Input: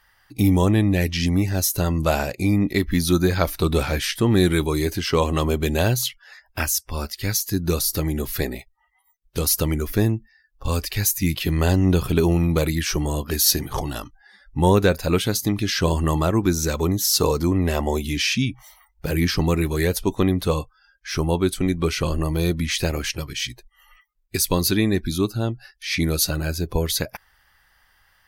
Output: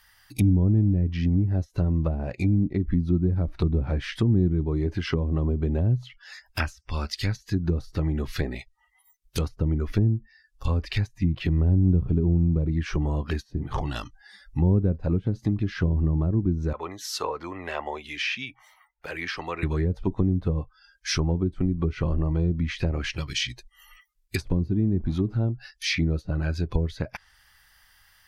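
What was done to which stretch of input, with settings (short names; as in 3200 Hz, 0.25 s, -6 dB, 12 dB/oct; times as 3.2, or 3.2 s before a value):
16.73–19.63 three-band isolator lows -23 dB, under 440 Hz, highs -20 dB, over 2500 Hz
24.36–25.47 zero-crossing step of -33.5 dBFS
whole clip: treble ducked by the level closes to 310 Hz, closed at -16 dBFS; EQ curve 120 Hz 0 dB, 470 Hz -6 dB, 5800 Hz +6 dB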